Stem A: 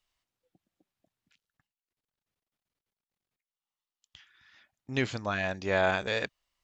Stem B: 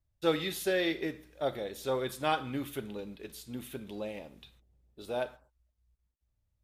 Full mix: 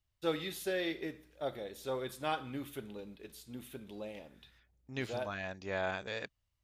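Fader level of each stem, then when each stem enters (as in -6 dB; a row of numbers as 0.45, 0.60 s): -9.5, -5.5 dB; 0.00, 0.00 s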